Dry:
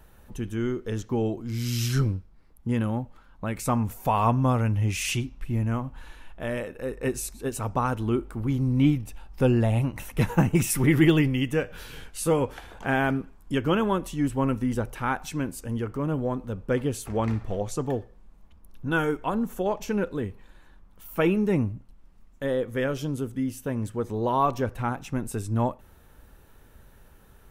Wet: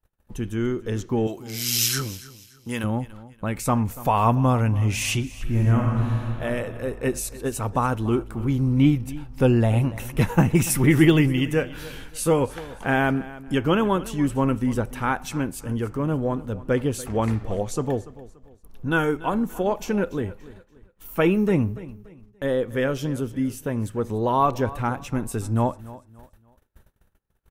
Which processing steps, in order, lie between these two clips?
gate -48 dBFS, range -36 dB; 1.27–2.84 tilt +3.5 dB/oct; 5.35–6.43 reverb throw, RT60 2.5 s, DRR -1.5 dB; feedback echo 0.288 s, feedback 33%, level -18 dB; gain +3 dB

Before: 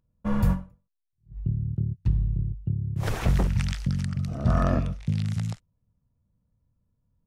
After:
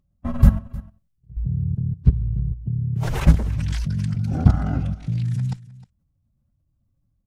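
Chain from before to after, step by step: bin magnitudes rounded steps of 15 dB; low shelf 310 Hz +5.5 dB; level quantiser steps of 15 dB; formant-preserving pitch shift +2.5 st; echo 0.309 s -19.5 dB; gain +7.5 dB

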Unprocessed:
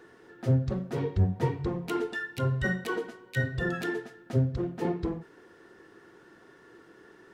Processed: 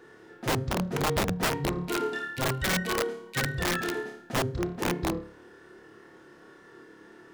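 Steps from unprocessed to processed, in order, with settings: flutter echo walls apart 4.8 m, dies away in 0.52 s; wrapped overs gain 20.5 dB

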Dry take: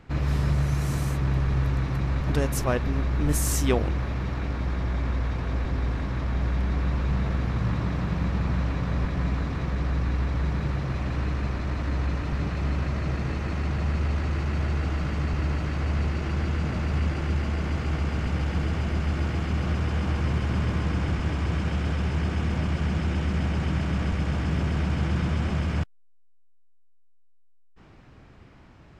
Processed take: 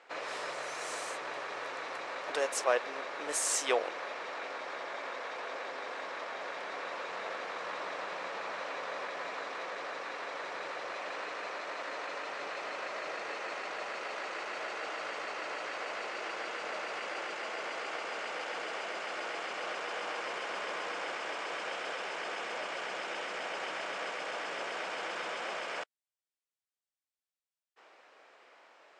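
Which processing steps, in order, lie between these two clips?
elliptic band-pass 510–8900 Hz, stop band 70 dB

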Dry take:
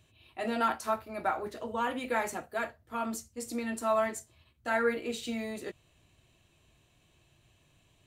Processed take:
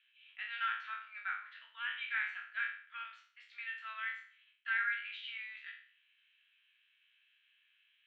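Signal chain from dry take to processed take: spectral trails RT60 0.50 s; elliptic band-pass 1500–3300 Hz, stop band 70 dB

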